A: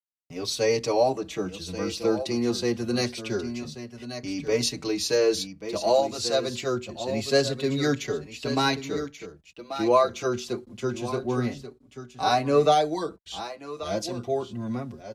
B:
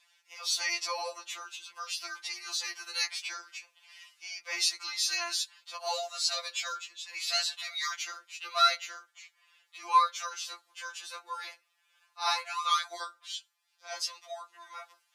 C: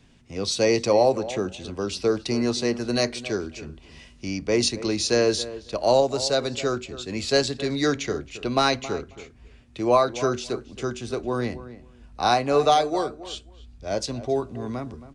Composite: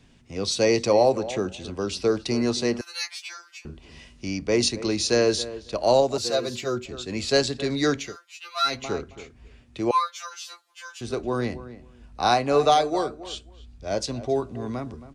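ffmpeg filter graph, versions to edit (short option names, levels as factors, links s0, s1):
-filter_complex "[1:a]asplit=3[s0][s1][s2];[2:a]asplit=5[s3][s4][s5][s6][s7];[s3]atrim=end=2.812[s8];[s0]atrim=start=2.808:end=3.652[s9];[s4]atrim=start=3.648:end=6.182[s10];[0:a]atrim=start=6.178:end=6.852[s11];[s5]atrim=start=6.848:end=8.17[s12];[s1]atrim=start=7.93:end=8.87[s13];[s6]atrim=start=8.63:end=9.912[s14];[s2]atrim=start=9.908:end=11.012[s15];[s7]atrim=start=11.008[s16];[s8][s9]acrossfade=d=0.004:c1=hsin:c2=hsin[s17];[s17][s10]acrossfade=d=0.004:c1=hsin:c2=hsin[s18];[s18][s11]acrossfade=d=0.004:c1=hsin:c2=hsin[s19];[s19][s12]acrossfade=d=0.004:c1=hsin:c2=hsin[s20];[s20][s13]acrossfade=d=0.24:c1=tri:c2=tri[s21];[s21][s14]acrossfade=d=0.24:c1=tri:c2=tri[s22];[s22][s15]acrossfade=d=0.004:c1=hsin:c2=hsin[s23];[s23][s16]acrossfade=d=0.004:c1=hsin:c2=hsin"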